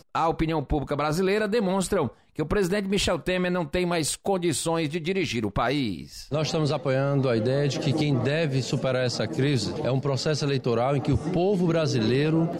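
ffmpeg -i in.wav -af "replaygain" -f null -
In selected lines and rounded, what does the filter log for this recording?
track_gain = +7.2 dB
track_peak = 0.137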